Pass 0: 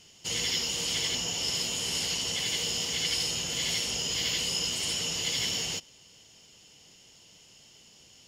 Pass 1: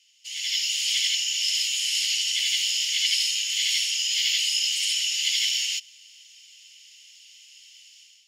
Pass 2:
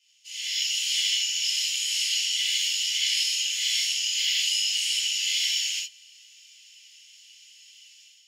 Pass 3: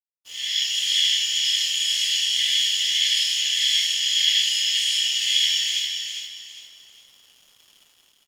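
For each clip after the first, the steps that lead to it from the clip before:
steep high-pass 2.2 kHz 36 dB/octave; treble shelf 2.9 kHz -8.5 dB; level rider gain up to 12 dB
gated-style reverb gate 100 ms flat, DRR -7 dB; trim -8.5 dB
small resonant body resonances 1.8/3.3 kHz, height 16 dB, ringing for 25 ms; crossover distortion -47.5 dBFS; on a send: feedback delay 403 ms, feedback 32%, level -6 dB

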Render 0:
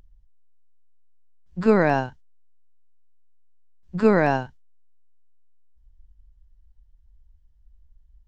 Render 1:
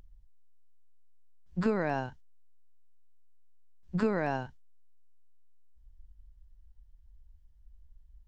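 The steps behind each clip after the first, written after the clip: compression 10:1, threshold -23 dBFS, peak gain reduction 12 dB; trim -1.5 dB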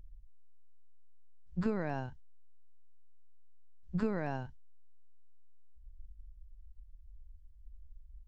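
bass shelf 150 Hz +11.5 dB; trim -7.5 dB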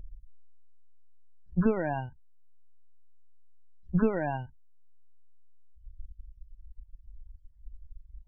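reverb removal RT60 2 s; loudest bins only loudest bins 32; trim +8.5 dB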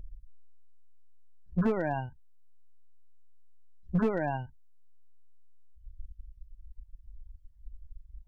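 hard clipper -20.5 dBFS, distortion -13 dB

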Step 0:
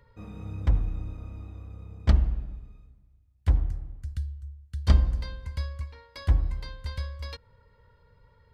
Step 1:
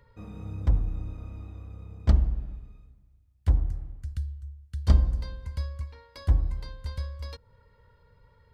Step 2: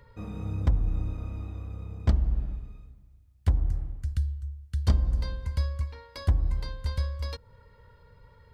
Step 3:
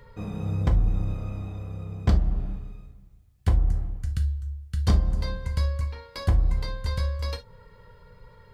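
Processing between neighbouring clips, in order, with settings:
dynamic bell 2.4 kHz, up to -7 dB, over -56 dBFS, Q 0.71
compression 6:1, threshold -23 dBFS, peak gain reduction 10 dB; trim +4.5 dB
gated-style reverb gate 90 ms falling, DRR 4 dB; trim +4 dB

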